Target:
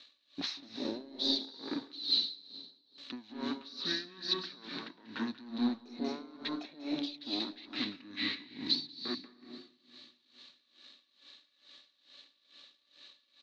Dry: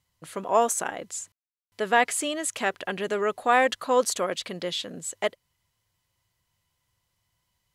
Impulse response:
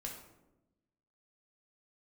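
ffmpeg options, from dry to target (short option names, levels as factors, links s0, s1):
-filter_complex "[0:a]aeval=exprs='if(lt(val(0),0),0.447*val(0),val(0))':c=same,highshelf=f=2400:g=11,acompressor=threshold=0.0126:ratio=6,alimiter=level_in=4.73:limit=0.0631:level=0:latency=1:release=54,volume=0.211,highpass=f=440:t=q:w=5,asoftclip=type=tanh:threshold=0.0224,lowpass=f=6800:t=q:w=8,aecho=1:1:239|478|717|956:0.075|0.0442|0.0261|0.0154,asplit=2[s0][s1];[1:a]atrim=start_sample=2205,adelay=109[s2];[s1][s2]afir=irnorm=-1:irlink=0,volume=0.944[s3];[s0][s3]amix=inputs=2:normalize=0,asetrate=25442,aresample=44100,aeval=exprs='val(0)*pow(10,-20*(0.5-0.5*cos(2*PI*2.3*n/s))/20)':c=same,volume=2.51"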